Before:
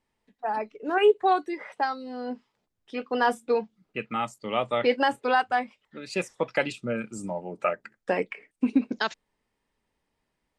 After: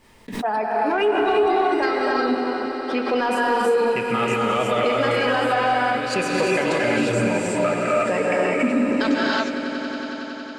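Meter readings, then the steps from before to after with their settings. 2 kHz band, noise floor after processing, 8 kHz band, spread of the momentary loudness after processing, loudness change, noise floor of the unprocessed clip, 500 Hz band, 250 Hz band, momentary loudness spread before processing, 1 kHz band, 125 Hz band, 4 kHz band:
+8.0 dB, -33 dBFS, +12.0 dB, 7 LU, +7.0 dB, -80 dBFS, +7.5 dB, +8.5 dB, 13 LU, +6.0 dB, +11.5 dB, +8.0 dB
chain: non-linear reverb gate 0.38 s rising, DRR -2.5 dB; in parallel at -6 dB: soft clip -21 dBFS, distortion -9 dB; on the sum: notch 810 Hz, Q 12; limiter -17.5 dBFS, peak gain reduction 11.5 dB; gate with hold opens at -57 dBFS; swelling echo 92 ms, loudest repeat 5, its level -14.5 dB; backwards sustainer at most 81 dB/s; gain +4 dB

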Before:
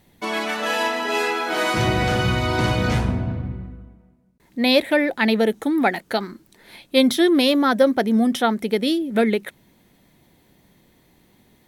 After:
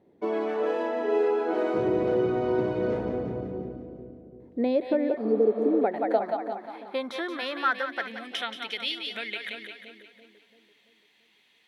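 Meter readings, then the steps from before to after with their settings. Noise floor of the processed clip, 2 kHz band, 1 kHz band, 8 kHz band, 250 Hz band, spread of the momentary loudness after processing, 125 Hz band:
-64 dBFS, -10.0 dB, -7.5 dB, under -20 dB, -9.5 dB, 13 LU, -15.0 dB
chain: split-band echo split 530 Hz, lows 0.338 s, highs 0.177 s, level -7.5 dB; compressor, threshold -19 dBFS, peak gain reduction 9 dB; spectral repair 5.19–5.77, 530–4300 Hz after; band-pass sweep 410 Hz -> 2800 Hz, 5.56–8.58; gain +5 dB

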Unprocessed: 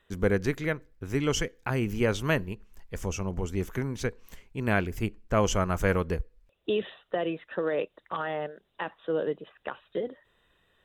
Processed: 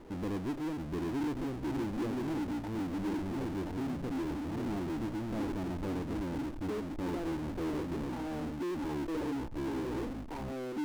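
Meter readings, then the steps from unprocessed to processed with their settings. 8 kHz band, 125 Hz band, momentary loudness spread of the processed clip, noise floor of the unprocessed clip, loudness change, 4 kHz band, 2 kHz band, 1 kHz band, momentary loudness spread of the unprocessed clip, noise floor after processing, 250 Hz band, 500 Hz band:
-14.5 dB, -7.5 dB, 3 LU, -73 dBFS, -6.0 dB, -10.5 dB, -13.0 dB, -7.0 dB, 12 LU, -40 dBFS, 0.0 dB, -9.5 dB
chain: echoes that change speed 0.656 s, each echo -3 st, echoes 3; vocal tract filter u; power-law curve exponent 0.35; gain -7.5 dB

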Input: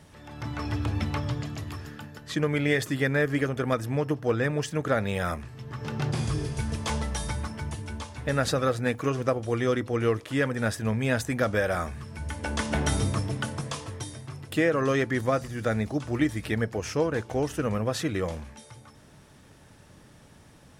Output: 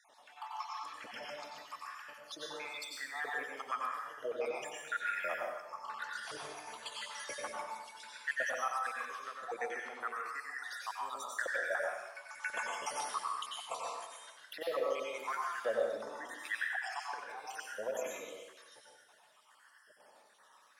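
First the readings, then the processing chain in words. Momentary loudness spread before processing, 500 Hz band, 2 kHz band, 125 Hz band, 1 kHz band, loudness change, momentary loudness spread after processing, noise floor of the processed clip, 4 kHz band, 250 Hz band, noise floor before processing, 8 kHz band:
12 LU, -12.5 dB, -6.0 dB, under -40 dB, -4.5 dB, -11.0 dB, 11 LU, -65 dBFS, -8.0 dB, -29.0 dB, -54 dBFS, -8.5 dB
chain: random spectral dropouts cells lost 66%; low shelf 130 Hz -6 dB; limiter -24 dBFS, peak gain reduction 11 dB; LFO high-pass saw up 0.96 Hz 540–1700 Hz; chopper 3.9 Hz, depth 60%, duty 85%; plate-style reverb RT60 0.98 s, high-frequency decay 0.9×, pre-delay 80 ms, DRR -2.5 dB; gain -6.5 dB

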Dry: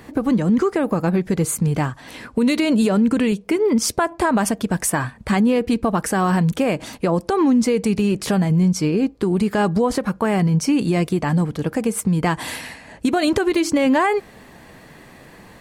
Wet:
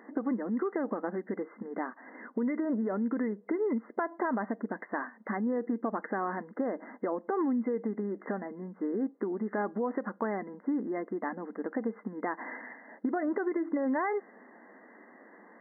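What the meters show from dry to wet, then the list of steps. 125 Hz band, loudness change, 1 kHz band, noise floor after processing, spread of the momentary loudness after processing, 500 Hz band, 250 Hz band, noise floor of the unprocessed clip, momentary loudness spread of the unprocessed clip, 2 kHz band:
-26.0 dB, -14.0 dB, -12.0 dB, -57 dBFS, 7 LU, -12.0 dB, -14.0 dB, -45 dBFS, 6 LU, -13.0 dB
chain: compressor, threshold -18 dBFS, peak gain reduction 5.5 dB; brick-wall FIR band-pass 200–2100 Hz; gain -8.5 dB

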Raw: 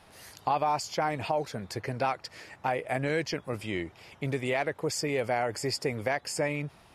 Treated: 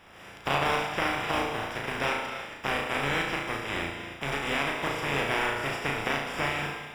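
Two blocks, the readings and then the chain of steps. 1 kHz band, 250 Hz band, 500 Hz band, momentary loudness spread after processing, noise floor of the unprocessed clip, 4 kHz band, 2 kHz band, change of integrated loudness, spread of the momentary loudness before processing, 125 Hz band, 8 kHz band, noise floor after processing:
+1.0 dB, 0.0 dB, -2.0 dB, 6 LU, -57 dBFS, +5.0 dB, +7.0 dB, +2.0 dB, 8 LU, -1.5 dB, -4.0 dB, -47 dBFS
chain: spectral contrast lowered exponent 0.22; in parallel at +3 dB: compressor, threshold -40 dBFS, peak gain reduction 17 dB; on the sum: polynomial smoothing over 25 samples; flutter echo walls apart 6.1 m, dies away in 0.59 s; non-linear reverb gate 0.35 s flat, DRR 6 dB; gain -1.5 dB

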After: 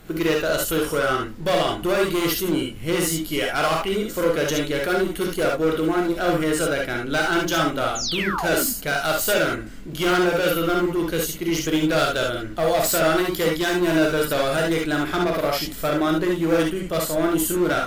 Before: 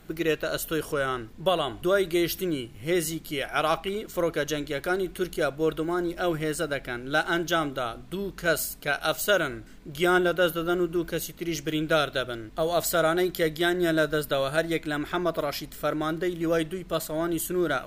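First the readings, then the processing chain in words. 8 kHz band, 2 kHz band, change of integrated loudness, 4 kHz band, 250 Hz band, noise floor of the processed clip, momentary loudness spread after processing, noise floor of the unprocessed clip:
+8.0 dB, +4.5 dB, +5.5 dB, +6.0 dB, +6.0 dB, -34 dBFS, 5 LU, -46 dBFS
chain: painted sound fall, 7.95–8.66, 220–7300 Hz -34 dBFS; hard clip -24 dBFS, distortion -10 dB; non-linear reverb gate 90 ms rising, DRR 0 dB; gain +5 dB

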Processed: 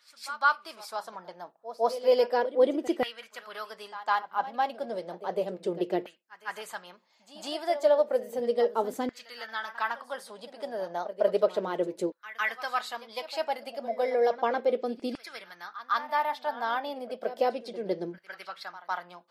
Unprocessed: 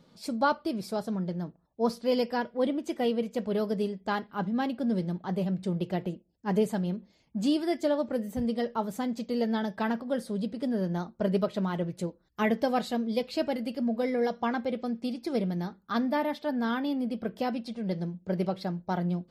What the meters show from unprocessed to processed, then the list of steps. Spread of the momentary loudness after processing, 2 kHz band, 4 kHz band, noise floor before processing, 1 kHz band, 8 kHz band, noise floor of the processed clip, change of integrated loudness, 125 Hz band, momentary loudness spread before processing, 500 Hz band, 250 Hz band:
16 LU, +4.5 dB, +1.0 dB, -66 dBFS, +3.5 dB, +0.5 dB, -63 dBFS, +0.5 dB, -17.5 dB, 6 LU, +2.5 dB, -10.0 dB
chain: LFO high-pass saw down 0.33 Hz 350–1700 Hz; pre-echo 0.155 s -14.5 dB

